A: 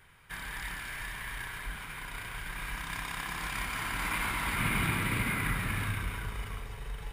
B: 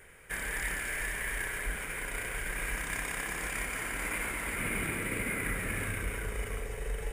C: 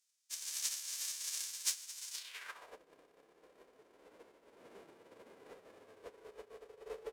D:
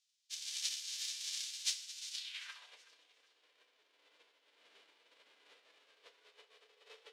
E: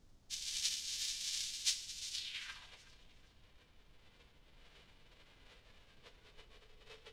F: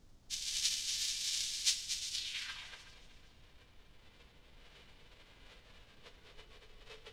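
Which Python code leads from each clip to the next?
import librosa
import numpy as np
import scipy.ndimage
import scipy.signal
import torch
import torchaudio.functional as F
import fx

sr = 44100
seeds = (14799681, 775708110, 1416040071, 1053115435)

y1 = fx.graphic_eq(x, sr, hz=(125, 500, 1000, 2000, 4000, 8000), db=(-7, 11, -9, 5, -11, 8))
y1 = fx.rider(y1, sr, range_db=5, speed_s=2.0)
y2 = fx.envelope_flatten(y1, sr, power=0.1)
y2 = fx.filter_sweep_bandpass(y2, sr, from_hz=6100.0, to_hz=430.0, start_s=2.12, end_s=2.8, q=1.9)
y2 = fx.upward_expand(y2, sr, threshold_db=-55.0, expansion=2.5)
y2 = y2 * 10.0 ** (7.5 / 20.0)
y3 = fx.bandpass_q(y2, sr, hz=3500.0, q=1.9)
y3 = fx.echo_feedback(y3, sr, ms=374, feedback_pct=40, wet_db=-17.5)
y3 = fx.rev_fdn(y3, sr, rt60_s=0.49, lf_ratio=0.75, hf_ratio=0.95, size_ms=20.0, drr_db=7.5)
y3 = y3 * 10.0 ** (6.0 / 20.0)
y4 = fx.dmg_noise_colour(y3, sr, seeds[0], colour='brown', level_db=-64.0)
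y4 = y4 * 10.0 ** (1.0 / 20.0)
y5 = y4 + 10.0 ** (-8.5 / 20.0) * np.pad(y4, (int(239 * sr / 1000.0), 0))[:len(y4)]
y5 = y5 * 10.0 ** (3.0 / 20.0)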